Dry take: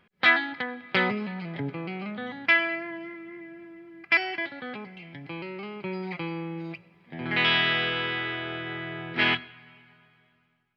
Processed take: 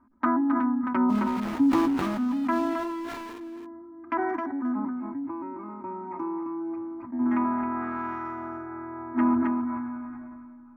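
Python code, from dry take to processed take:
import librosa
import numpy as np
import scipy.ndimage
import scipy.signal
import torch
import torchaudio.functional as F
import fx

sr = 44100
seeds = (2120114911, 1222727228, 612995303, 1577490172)

y = fx.wiener(x, sr, points=15)
y = y + 0.77 * np.pad(y, (int(3.2 * sr / 1000.0), 0))[:len(y)]
y = fx.env_lowpass_down(y, sr, base_hz=840.0, full_db=-20.0)
y = fx.curve_eq(y, sr, hz=(100.0, 160.0, 260.0, 450.0, 1000.0, 1900.0, 4000.0, 5700.0), db=(0, -17, 14, -18, 7, -10, -23, -12))
y = fx.sample_gate(y, sr, floor_db=-37.5, at=(1.08, 3.38), fade=0.02)
y = fx.high_shelf(y, sr, hz=4200.0, db=-11.0)
y = y + 10.0 ** (-8.0 / 20.0) * np.pad(y, (int(266 * sr / 1000.0), 0))[:len(y)]
y = fx.sustainer(y, sr, db_per_s=21.0)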